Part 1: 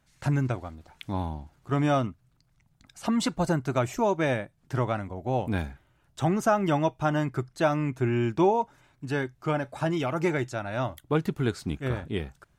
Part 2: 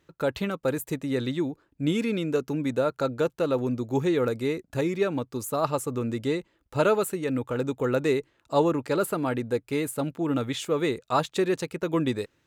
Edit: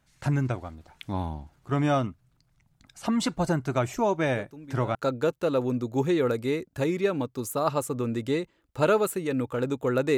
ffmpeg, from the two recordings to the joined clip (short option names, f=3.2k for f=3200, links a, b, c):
-filter_complex "[1:a]asplit=2[a][b];[0:a]apad=whole_dur=10.17,atrim=end=10.17,atrim=end=4.952[c];[b]atrim=start=2.918:end=8.14[d];[a]atrim=start=2.31:end=2.92,asetpts=PTS-STARTPTS,volume=-16dB,afade=t=in:d=0.004:c=hsin,afade=t=out:st=0.606:d=0.004:c=hsin,adelay=4340[e];[c][d]acrossfade=d=0.004:c1=hsin:c2=hsin[f];[f][e]amix=inputs=2:normalize=0"